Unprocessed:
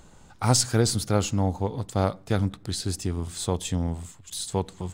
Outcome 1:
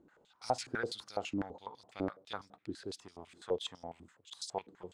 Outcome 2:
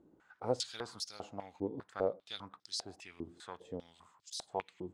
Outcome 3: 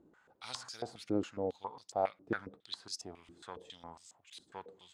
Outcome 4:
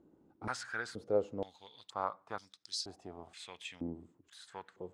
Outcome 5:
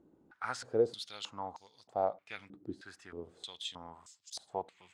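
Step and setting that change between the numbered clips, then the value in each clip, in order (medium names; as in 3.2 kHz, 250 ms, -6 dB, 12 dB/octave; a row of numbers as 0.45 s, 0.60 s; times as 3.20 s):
step-sequenced band-pass, rate: 12 Hz, 5 Hz, 7.3 Hz, 2.1 Hz, 3.2 Hz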